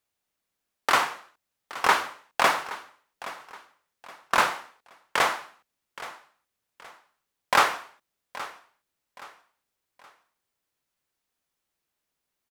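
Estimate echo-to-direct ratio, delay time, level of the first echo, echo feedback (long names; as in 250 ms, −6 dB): −16.0 dB, 822 ms, −16.5 dB, 36%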